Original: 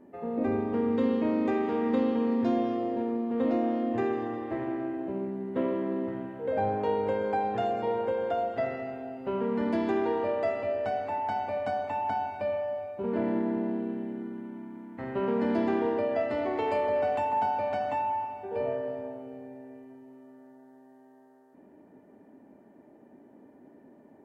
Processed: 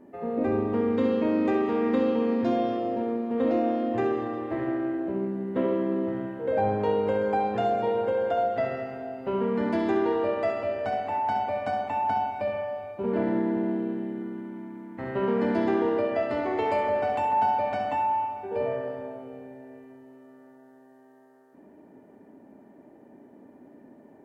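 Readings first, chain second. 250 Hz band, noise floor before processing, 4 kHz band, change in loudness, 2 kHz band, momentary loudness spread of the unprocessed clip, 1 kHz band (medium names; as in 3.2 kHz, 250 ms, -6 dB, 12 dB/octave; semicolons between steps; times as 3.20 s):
+2.0 dB, -56 dBFS, +3.5 dB, +2.5 dB, +3.0 dB, 9 LU, +3.5 dB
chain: flutter echo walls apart 11.5 m, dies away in 0.46 s; trim +2.5 dB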